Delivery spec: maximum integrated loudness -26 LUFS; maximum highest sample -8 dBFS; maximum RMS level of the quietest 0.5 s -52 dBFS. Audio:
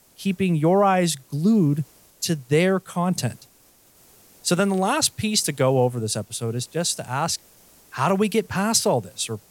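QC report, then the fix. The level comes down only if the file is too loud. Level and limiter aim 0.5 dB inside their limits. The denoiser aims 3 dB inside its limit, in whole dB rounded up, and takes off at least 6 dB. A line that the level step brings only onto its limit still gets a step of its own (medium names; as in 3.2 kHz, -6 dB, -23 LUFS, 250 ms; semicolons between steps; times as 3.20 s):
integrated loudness -22.5 LUFS: fail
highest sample -5.5 dBFS: fail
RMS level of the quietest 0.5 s -56 dBFS: pass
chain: trim -4 dB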